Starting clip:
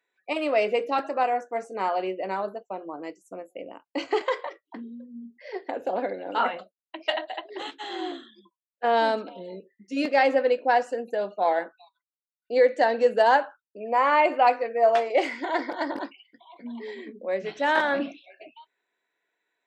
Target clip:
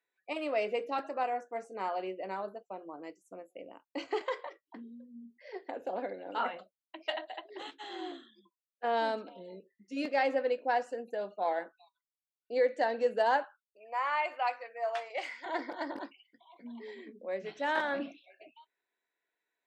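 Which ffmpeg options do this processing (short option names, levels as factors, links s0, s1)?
-filter_complex "[0:a]asettb=1/sr,asplit=3[s0][s1][s2];[s0]atrim=end=13.444[s3];[s1]atrim=start=13.44:end=15.46,asetpts=PTS-STARTPTS,afade=t=in:d=0.004:c=qsin,afade=t=out:st=2.016:d=0.004:c=qsin,highpass=880[s4];[s2]atrim=start=15.456[s5];[s3][s4]acrossfade=d=0.004:c1=hsin:c2=qsin[s6];[s6][s5]acrossfade=d=0.004:c1=qsin:c2=hsin,volume=0.376"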